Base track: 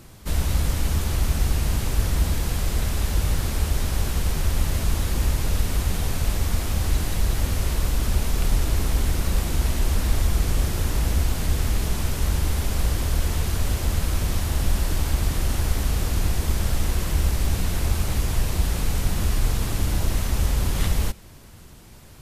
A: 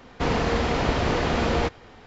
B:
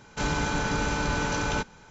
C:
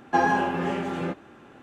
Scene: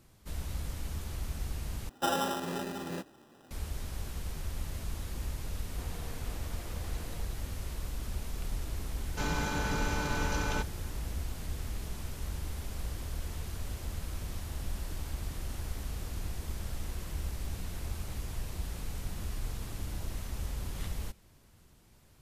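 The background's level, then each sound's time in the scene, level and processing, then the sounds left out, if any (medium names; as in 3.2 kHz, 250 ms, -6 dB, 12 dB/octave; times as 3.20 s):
base track -15 dB
1.89 s: replace with C -9 dB + sample-and-hold 20×
5.58 s: add A -16 dB + compression, threshold -30 dBFS
9.00 s: add B -6 dB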